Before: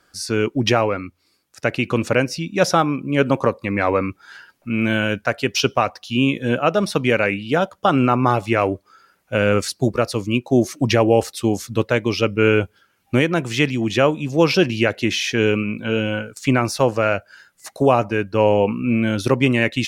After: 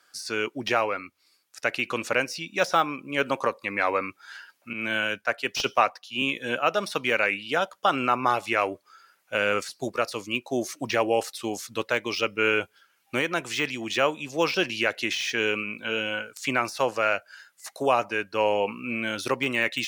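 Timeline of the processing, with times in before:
4.73–6.22 s: three bands expanded up and down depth 100%
whole clip: high-pass 1.2 kHz 6 dB/octave; de-esser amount 65%

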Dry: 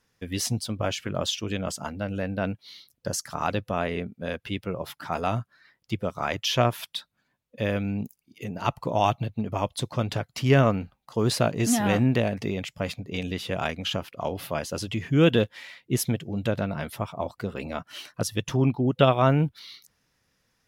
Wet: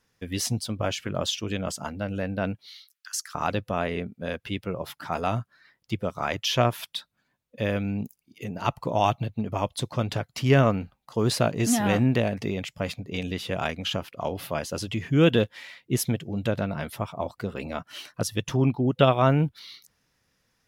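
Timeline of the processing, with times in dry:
2.66–3.35 s: steep high-pass 1.2 kHz 48 dB/octave

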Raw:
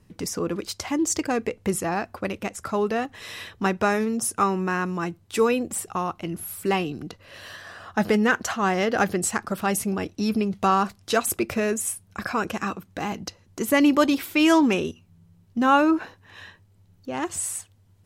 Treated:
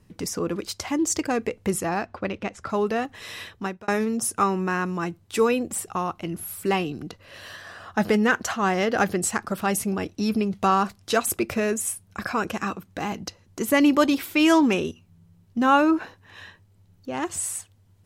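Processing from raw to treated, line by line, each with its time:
2.05–2.70 s: low-pass 4.6 kHz
3.43–3.88 s: fade out

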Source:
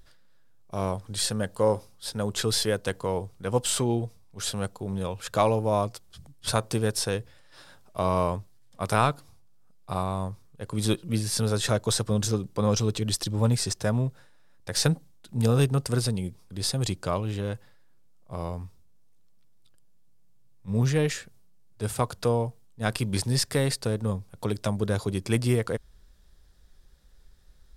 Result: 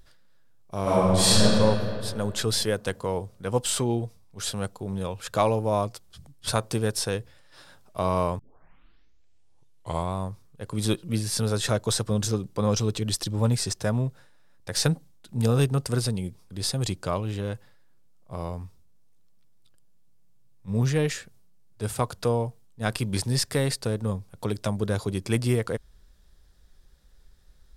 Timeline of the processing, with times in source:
0.82–1.42 s: reverb throw, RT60 2.5 s, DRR -11 dB
8.39 s: tape start 1.76 s

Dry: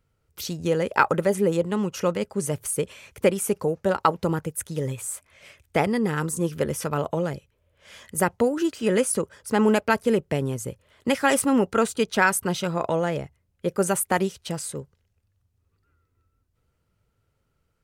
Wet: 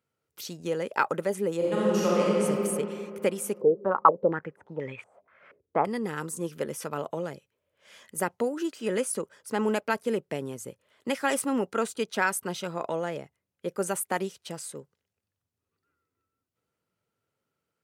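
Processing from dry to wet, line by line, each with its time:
1.57–2.41 s: reverb throw, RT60 2.7 s, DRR -8 dB
3.61–5.85 s: step-sequenced low-pass 4.2 Hz 430–2300 Hz
whole clip: high-pass 200 Hz 12 dB/octave; trim -6 dB

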